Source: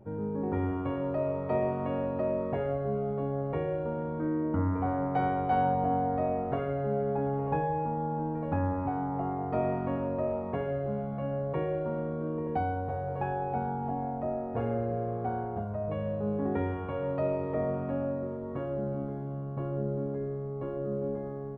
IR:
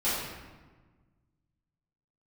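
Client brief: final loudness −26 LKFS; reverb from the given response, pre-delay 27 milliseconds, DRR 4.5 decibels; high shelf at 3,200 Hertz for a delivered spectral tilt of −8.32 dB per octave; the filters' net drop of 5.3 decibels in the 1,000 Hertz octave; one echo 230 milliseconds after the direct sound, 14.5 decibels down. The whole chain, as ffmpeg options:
-filter_complex "[0:a]equalizer=frequency=1000:width_type=o:gain=-8,highshelf=frequency=3200:gain=-4.5,aecho=1:1:230:0.188,asplit=2[link_01][link_02];[1:a]atrim=start_sample=2205,adelay=27[link_03];[link_02][link_03]afir=irnorm=-1:irlink=0,volume=-15dB[link_04];[link_01][link_04]amix=inputs=2:normalize=0,volume=4.5dB"

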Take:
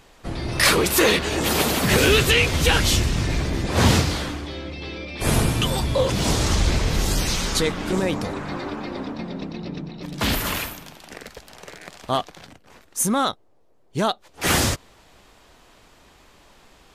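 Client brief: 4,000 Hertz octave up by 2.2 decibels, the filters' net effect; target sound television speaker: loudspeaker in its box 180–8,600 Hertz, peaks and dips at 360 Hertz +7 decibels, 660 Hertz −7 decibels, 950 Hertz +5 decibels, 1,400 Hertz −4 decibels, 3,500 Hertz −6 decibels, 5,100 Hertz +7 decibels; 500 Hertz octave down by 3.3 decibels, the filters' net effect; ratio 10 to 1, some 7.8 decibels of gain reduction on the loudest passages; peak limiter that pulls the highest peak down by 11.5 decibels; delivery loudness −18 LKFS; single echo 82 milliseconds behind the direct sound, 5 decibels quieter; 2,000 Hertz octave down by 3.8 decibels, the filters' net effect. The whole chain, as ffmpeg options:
ffmpeg -i in.wav -af "equalizer=frequency=500:width_type=o:gain=-7,equalizer=frequency=2000:width_type=o:gain=-4.5,equalizer=frequency=4000:width_type=o:gain=4,acompressor=threshold=-21dB:ratio=10,alimiter=limit=-18.5dB:level=0:latency=1,highpass=frequency=180:width=0.5412,highpass=frequency=180:width=1.3066,equalizer=frequency=360:width_type=q:width=4:gain=7,equalizer=frequency=660:width_type=q:width=4:gain=-7,equalizer=frequency=950:width_type=q:width=4:gain=5,equalizer=frequency=1400:width_type=q:width=4:gain=-4,equalizer=frequency=3500:width_type=q:width=4:gain=-6,equalizer=frequency=5100:width_type=q:width=4:gain=7,lowpass=frequency=8600:width=0.5412,lowpass=frequency=8600:width=1.3066,aecho=1:1:82:0.562,volume=10.5dB" out.wav

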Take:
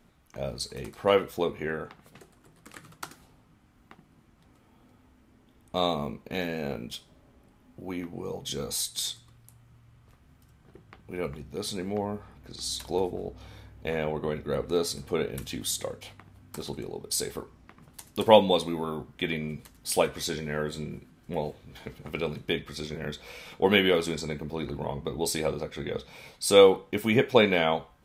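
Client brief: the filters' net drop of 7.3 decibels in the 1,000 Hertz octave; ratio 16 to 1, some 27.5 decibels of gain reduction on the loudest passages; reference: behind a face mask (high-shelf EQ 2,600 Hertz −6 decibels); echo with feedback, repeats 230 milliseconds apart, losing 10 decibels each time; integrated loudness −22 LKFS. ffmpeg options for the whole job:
ffmpeg -i in.wav -af "equalizer=frequency=1000:width_type=o:gain=-9,acompressor=threshold=-41dB:ratio=16,highshelf=frequency=2600:gain=-6,aecho=1:1:230|460|690|920:0.316|0.101|0.0324|0.0104,volume=25.5dB" out.wav

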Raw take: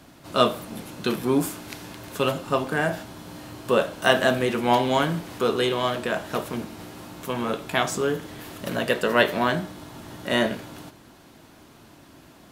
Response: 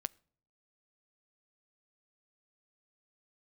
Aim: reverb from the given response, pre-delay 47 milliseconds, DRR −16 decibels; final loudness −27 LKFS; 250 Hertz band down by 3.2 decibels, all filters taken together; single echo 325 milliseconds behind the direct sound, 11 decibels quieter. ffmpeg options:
-filter_complex "[0:a]equalizer=frequency=250:width_type=o:gain=-4,aecho=1:1:325:0.282,asplit=2[link_01][link_02];[1:a]atrim=start_sample=2205,adelay=47[link_03];[link_02][link_03]afir=irnorm=-1:irlink=0,volume=17dB[link_04];[link_01][link_04]amix=inputs=2:normalize=0,volume=-17.5dB"

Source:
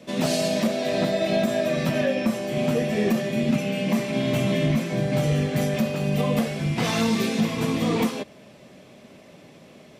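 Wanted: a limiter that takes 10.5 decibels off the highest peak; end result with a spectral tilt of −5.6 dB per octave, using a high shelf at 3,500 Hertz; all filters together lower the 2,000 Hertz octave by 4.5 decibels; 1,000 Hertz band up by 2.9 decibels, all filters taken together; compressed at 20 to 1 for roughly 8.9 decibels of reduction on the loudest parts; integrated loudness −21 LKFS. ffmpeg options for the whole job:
ffmpeg -i in.wav -af "equalizer=frequency=1000:width_type=o:gain=5.5,equalizer=frequency=2000:width_type=o:gain=-8.5,highshelf=frequency=3500:gain=4,acompressor=threshold=-26dB:ratio=20,volume=14.5dB,alimiter=limit=-12.5dB:level=0:latency=1" out.wav

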